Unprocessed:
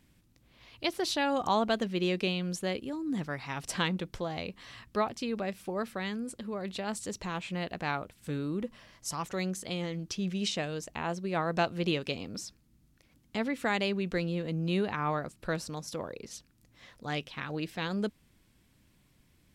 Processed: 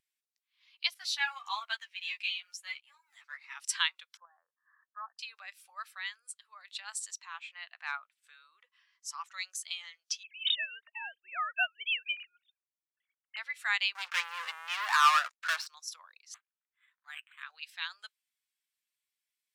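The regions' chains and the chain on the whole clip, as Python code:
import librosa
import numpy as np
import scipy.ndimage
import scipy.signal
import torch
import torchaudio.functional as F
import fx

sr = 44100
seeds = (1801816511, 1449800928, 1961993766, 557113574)

y = fx.chain(x, sr, fx.law_mismatch(coded='A'),
    fx.peak_eq(hz=2200.0, db=4.5, octaves=0.54),
    fx.ensemble(), at=(0.94, 3.55))
y = fx.chain(y, sr, fx.cheby1_lowpass(hz=1800.0, order=8),
    fx.level_steps(step_db=11), at=(4.17, 5.19))
y = fx.chain(y, sr, fx.high_shelf(hz=4800.0, db=-9.5),
    fx.clip_hard(threshold_db=-21.0), at=(7.19, 9.34))
y = fx.chain(y, sr, fx.sine_speech(),
    fx.high_shelf(hz=3000.0, db=6.0), at=(10.23, 13.37))
y = fx.chain(y, sr, fx.lowpass(hz=2200.0, slope=12),
    fx.low_shelf(hz=100.0, db=-7.5),
    fx.leveller(passes=5), at=(13.95, 15.67))
y = fx.chain(y, sr, fx.highpass(hz=1400.0, slope=6),
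    fx.resample_linear(factor=8), at=(16.34, 17.43))
y = scipy.signal.sosfilt(scipy.signal.cheby2(4, 80, 180.0, 'highpass', fs=sr, output='sos'), y)
y = fx.high_shelf(y, sr, hz=2900.0, db=9.5)
y = fx.spectral_expand(y, sr, expansion=1.5)
y = F.gain(torch.from_numpy(y), -1.5).numpy()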